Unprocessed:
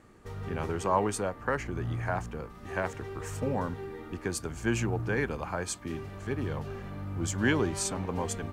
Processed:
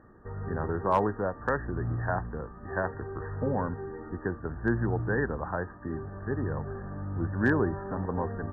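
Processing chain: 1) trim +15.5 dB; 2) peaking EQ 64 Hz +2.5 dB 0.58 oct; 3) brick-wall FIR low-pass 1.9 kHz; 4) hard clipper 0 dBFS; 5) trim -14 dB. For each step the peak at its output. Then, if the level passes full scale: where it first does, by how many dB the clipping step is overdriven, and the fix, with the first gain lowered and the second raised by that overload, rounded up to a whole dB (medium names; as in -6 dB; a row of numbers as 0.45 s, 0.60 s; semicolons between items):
+4.0 dBFS, +4.0 dBFS, +4.0 dBFS, 0.0 dBFS, -14.0 dBFS; step 1, 4.0 dB; step 1 +11.5 dB, step 5 -10 dB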